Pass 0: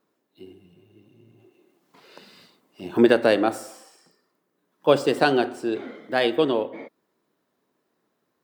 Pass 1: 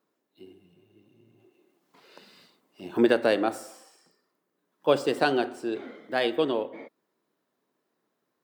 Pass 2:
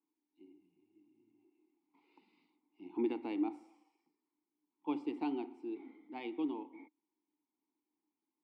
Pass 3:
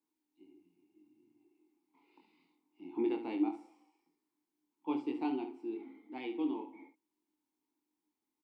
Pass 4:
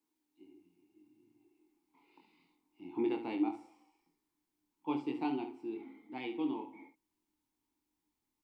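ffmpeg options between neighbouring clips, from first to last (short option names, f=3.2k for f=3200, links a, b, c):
-af "lowshelf=f=84:g=-10,volume=-4dB"
-filter_complex "[0:a]asplit=3[a][b][c];[a]bandpass=f=300:t=q:w=8,volume=0dB[d];[b]bandpass=f=870:t=q:w=8,volume=-6dB[e];[c]bandpass=f=2.24k:t=q:w=8,volume=-9dB[f];[d][e][f]amix=inputs=3:normalize=0,volume=-2dB"
-af "aecho=1:1:23|71:0.562|0.316"
-af "asubboost=boost=6:cutoff=120,volume=2.5dB"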